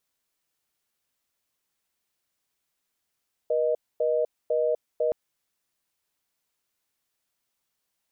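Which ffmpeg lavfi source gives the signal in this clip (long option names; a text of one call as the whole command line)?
ffmpeg -f lavfi -i "aevalsrc='0.0631*(sin(2*PI*480*t)+sin(2*PI*620*t))*clip(min(mod(t,0.5),0.25-mod(t,0.5))/0.005,0,1)':duration=1.62:sample_rate=44100" out.wav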